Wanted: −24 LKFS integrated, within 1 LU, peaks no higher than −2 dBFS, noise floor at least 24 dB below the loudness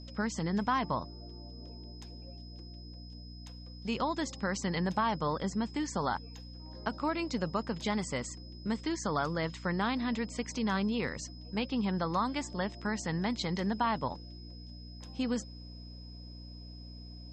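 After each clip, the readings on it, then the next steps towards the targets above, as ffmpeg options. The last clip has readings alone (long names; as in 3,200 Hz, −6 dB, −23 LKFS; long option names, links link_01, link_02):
mains hum 60 Hz; hum harmonics up to 300 Hz; level of the hum −45 dBFS; interfering tone 5,100 Hz; level of the tone −53 dBFS; integrated loudness −33.5 LKFS; sample peak −17.5 dBFS; target loudness −24.0 LKFS
→ -af "bandreject=frequency=60:width_type=h:width=4,bandreject=frequency=120:width_type=h:width=4,bandreject=frequency=180:width_type=h:width=4,bandreject=frequency=240:width_type=h:width=4,bandreject=frequency=300:width_type=h:width=4"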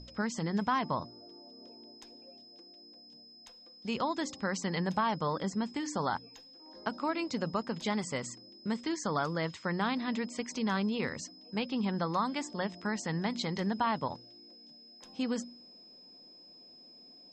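mains hum none found; interfering tone 5,100 Hz; level of the tone −53 dBFS
→ -af "bandreject=frequency=5100:width=30"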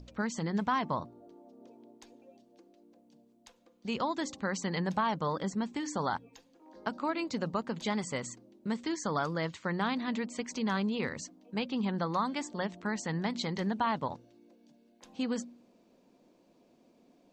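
interfering tone none found; integrated loudness −34.0 LKFS; sample peak −17.5 dBFS; target loudness −24.0 LKFS
→ -af "volume=10dB"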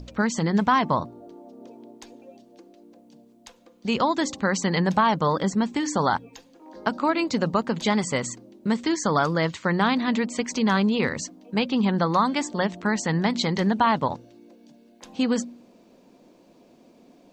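integrated loudness −24.0 LKFS; sample peak −7.5 dBFS; background noise floor −56 dBFS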